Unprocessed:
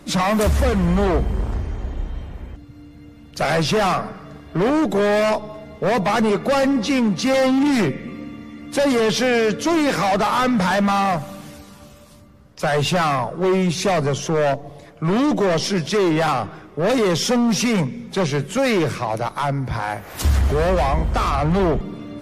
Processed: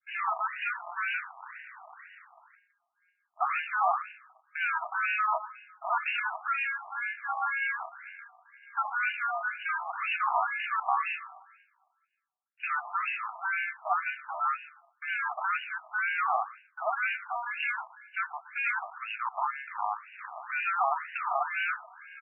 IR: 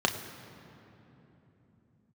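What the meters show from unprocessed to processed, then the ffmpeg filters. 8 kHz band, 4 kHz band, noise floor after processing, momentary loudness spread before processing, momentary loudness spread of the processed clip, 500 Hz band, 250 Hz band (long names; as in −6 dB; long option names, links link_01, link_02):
below −40 dB, −19.0 dB, −76 dBFS, 12 LU, 13 LU, −24.0 dB, below −40 dB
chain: -filter_complex "[0:a]bandreject=frequency=1100:width=10,acrossover=split=2100[link_01][link_02];[link_01]acrusher=samples=23:mix=1:aa=0.000001[link_03];[link_03][link_02]amix=inputs=2:normalize=0,lowshelf=frequency=450:gain=-9.5,agate=range=-33dB:threshold=-37dB:ratio=3:detection=peak,aecho=1:1:120:0.15,adynamicequalizer=threshold=0.0158:dfrequency=600:dqfactor=1:tfrequency=600:tqfactor=1:attack=5:release=100:ratio=0.375:range=1.5:mode=cutabove:tftype=bell,afftfilt=real='re*between(b*sr/1024,890*pow(2100/890,0.5+0.5*sin(2*PI*2*pts/sr))/1.41,890*pow(2100/890,0.5+0.5*sin(2*PI*2*pts/sr))*1.41)':imag='im*between(b*sr/1024,890*pow(2100/890,0.5+0.5*sin(2*PI*2*pts/sr))/1.41,890*pow(2100/890,0.5+0.5*sin(2*PI*2*pts/sr))*1.41)':win_size=1024:overlap=0.75"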